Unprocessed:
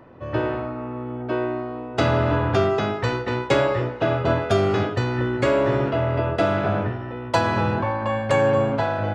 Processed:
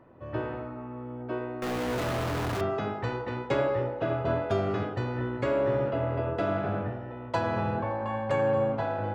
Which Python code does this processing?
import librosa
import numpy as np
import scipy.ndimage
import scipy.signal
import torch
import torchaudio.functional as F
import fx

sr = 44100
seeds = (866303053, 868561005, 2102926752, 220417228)

y = fx.clip_1bit(x, sr, at=(1.62, 2.61))
y = fx.high_shelf(y, sr, hz=3500.0, db=-9.5)
y = fx.echo_wet_bandpass(y, sr, ms=83, feedback_pct=65, hz=560.0, wet_db=-7.5)
y = F.gain(torch.from_numpy(y), -8.0).numpy()